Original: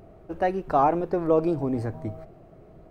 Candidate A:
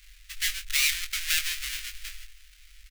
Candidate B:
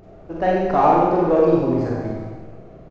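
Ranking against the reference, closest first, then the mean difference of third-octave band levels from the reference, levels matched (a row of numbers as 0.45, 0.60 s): B, A; 4.5, 26.5 dB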